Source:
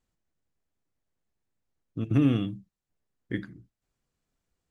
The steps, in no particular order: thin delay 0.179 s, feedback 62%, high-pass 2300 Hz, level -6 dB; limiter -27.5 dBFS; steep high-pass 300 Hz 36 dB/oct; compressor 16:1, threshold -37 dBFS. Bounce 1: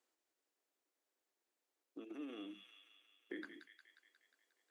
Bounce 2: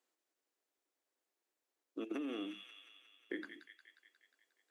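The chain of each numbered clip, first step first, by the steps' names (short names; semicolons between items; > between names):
limiter > thin delay > compressor > steep high-pass; steep high-pass > limiter > thin delay > compressor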